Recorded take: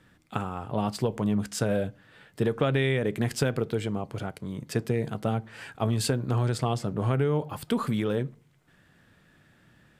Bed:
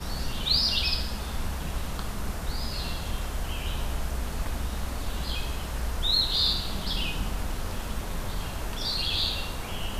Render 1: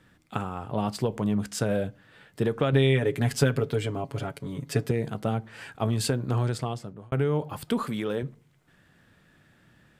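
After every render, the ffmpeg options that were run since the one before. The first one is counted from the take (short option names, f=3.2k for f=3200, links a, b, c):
-filter_complex "[0:a]asettb=1/sr,asplit=3[a][b][c];[a]atrim=end=2.724[d];[b]atrim=start=2.72:end=4.91,asetpts=PTS-STARTPTS,afade=t=in:d=0.004:c=qsin,afade=t=out:st=2.186:d=0.004:c=qsin,aecho=1:1:7.2:0.77,atrim=end_sample=96579[e];[c]atrim=start=4.906[f];[d][e]acrossfade=d=0.004:c1=hsin:c2=qsin[g];[g][f]acrossfade=d=0.004:c1=qsin:c2=hsin,asettb=1/sr,asplit=3[h][i][j];[h]atrim=end=7.834[k];[i]atrim=start=7.83:end=8.23,asetpts=PTS-STARTPTS,afade=t=in:d=0.004:c=qsin,afade=t=out:st=0.396:d=0.004:c=qsin,highpass=f=240:p=1[l];[j]atrim=start=8.226[m];[k][l]acrossfade=d=0.004:c1=hsin:c2=qsin[n];[n][m]acrossfade=d=0.004:c1=qsin:c2=hsin,asplit=2[o][p];[o]atrim=end=7.12,asetpts=PTS-STARTPTS,afade=t=out:st=6.42:d=0.7[q];[p]atrim=start=7.12,asetpts=PTS-STARTPTS,afade=t=in:d=0.004:c=hsin[r];[q][r]concat=n=2:v=0:a=1"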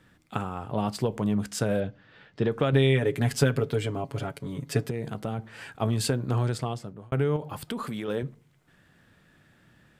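-filter_complex "[0:a]asettb=1/sr,asplit=3[a][b][c];[a]atrim=end=1.804[d];[b]atrim=start=1.8:end=2.52,asetpts=PTS-STARTPTS,afade=t=in:d=0.004:c=qsin,afade=t=out:st=0.716:d=0.004:c=qsin,lowpass=f=5.5k:w=0.5412,lowpass=f=5.5k:w=1.3066[e];[c]atrim=start=2.516[f];[d][e]acrossfade=d=0.004:c1=hsin:c2=qsin[g];[g][f]acrossfade=d=0.004:c1=qsin:c2=hsin,asettb=1/sr,asplit=3[h][i][j];[h]atrim=end=4.834[k];[i]atrim=start=4.83:end=5.39,asetpts=PTS-STARTPTS,afade=t=in:d=0.004:c=qsin,afade=t=out:st=0.556:d=0.004:c=qsin,acompressor=threshold=-28dB:ratio=2.5:attack=3.2:release=140:knee=1:detection=peak[l];[j]atrim=start=5.386[m];[k][l]acrossfade=d=0.004:c1=hsin:c2=qsin[n];[n][m]acrossfade=d=0.004:c1=qsin:c2=hsin,asettb=1/sr,asplit=3[o][p][q];[o]atrim=end=7.364[r];[p]atrim=start=7.36:end=8.08,asetpts=PTS-STARTPTS,afade=t=in:d=0.004:c=qsin,afade=t=out:st=0.716:d=0.004:c=qsin,acompressor=threshold=-29dB:ratio=4:attack=3.2:release=140:knee=1:detection=peak[s];[q]atrim=start=8.076[t];[r][s]acrossfade=d=0.004:c1=hsin:c2=qsin[u];[u][t]acrossfade=d=0.004:c1=qsin:c2=hsin"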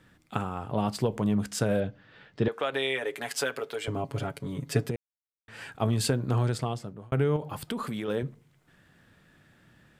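-filter_complex "[0:a]asettb=1/sr,asplit=3[a][b][c];[a]atrim=end=2.484[d];[b]atrim=start=2.48:end=3.88,asetpts=PTS-STARTPTS,afade=t=in:d=0.004:c=qsin,afade=t=out:st=1.396:d=0.004:c=qsin,highpass=590[e];[c]atrim=start=3.876[f];[d][e]acrossfade=d=0.004:c1=hsin:c2=qsin[g];[g][f]acrossfade=d=0.004:c1=qsin:c2=hsin,asplit=3[h][i][j];[h]atrim=end=4.96,asetpts=PTS-STARTPTS,afade=t=out:st=4.956:d=0.004:c=hsin[k];[i]atrim=start=4.96:end=5.48,asetpts=PTS-STARTPTS,volume=0[l];[j]atrim=start=5.48,asetpts=PTS-STARTPTS,afade=t=in:d=0.004:c=hsin[m];[k][l][m]concat=n=3:v=0:a=1"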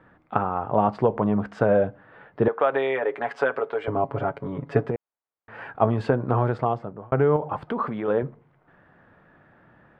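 -af "lowpass=1.7k,equalizer=f=840:t=o:w=2.5:g=11.5"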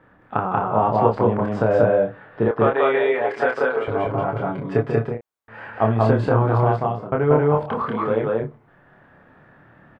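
-filter_complex "[0:a]asplit=2[a][b];[b]adelay=27,volume=-3dB[c];[a][c]amix=inputs=2:normalize=0,aecho=1:1:186.6|221.6:0.891|0.355"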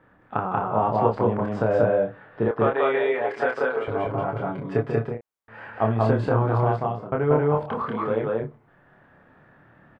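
-af "volume=-3.5dB"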